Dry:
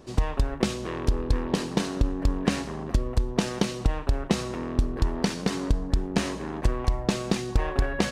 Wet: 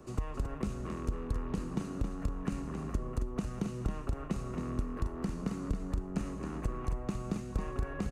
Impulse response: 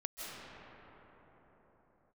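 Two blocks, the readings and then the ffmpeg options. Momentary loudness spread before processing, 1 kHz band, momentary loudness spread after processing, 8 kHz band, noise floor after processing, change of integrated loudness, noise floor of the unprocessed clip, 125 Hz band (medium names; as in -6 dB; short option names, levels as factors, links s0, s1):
3 LU, -10.5 dB, 2 LU, -15.0 dB, -42 dBFS, -9.5 dB, -36 dBFS, -8.0 dB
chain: -filter_complex "[0:a]equalizer=f=1700:t=o:w=2.8:g=-4.5,acrossover=split=220|630|1400[s0][s1][s2][s3];[s0]acompressor=threshold=0.0355:ratio=4[s4];[s1]acompressor=threshold=0.00631:ratio=4[s5];[s2]acompressor=threshold=0.00224:ratio=4[s6];[s3]acompressor=threshold=0.00282:ratio=4[s7];[s4][s5][s6][s7]amix=inputs=4:normalize=0,superequalizer=10b=2.24:13b=0.447:14b=0.501,aecho=1:1:271:0.473,volume=0.794"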